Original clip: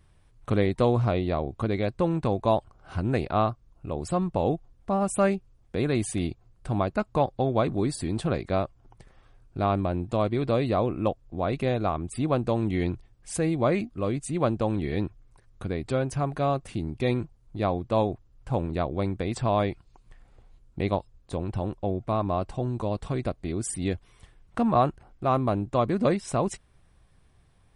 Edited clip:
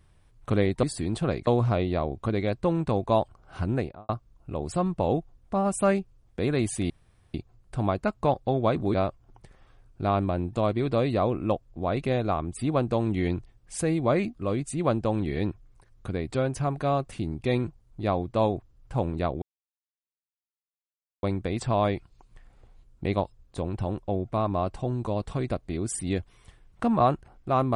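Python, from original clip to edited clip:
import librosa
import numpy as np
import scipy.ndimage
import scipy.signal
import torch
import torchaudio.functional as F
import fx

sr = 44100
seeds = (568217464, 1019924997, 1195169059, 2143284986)

y = fx.studio_fade_out(x, sr, start_s=3.03, length_s=0.42)
y = fx.edit(y, sr, fx.insert_room_tone(at_s=6.26, length_s=0.44),
    fx.move(start_s=7.86, length_s=0.64, to_s=0.83),
    fx.insert_silence(at_s=18.98, length_s=1.81), tone=tone)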